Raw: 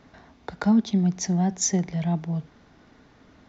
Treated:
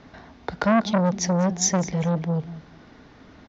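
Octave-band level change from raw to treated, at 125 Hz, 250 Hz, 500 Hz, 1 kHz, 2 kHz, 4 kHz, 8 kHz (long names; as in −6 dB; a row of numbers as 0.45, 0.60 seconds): +1.0 dB, −0.5 dB, +9.5 dB, +7.0 dB, +8.5 dB, +4.5 dB, can't be measured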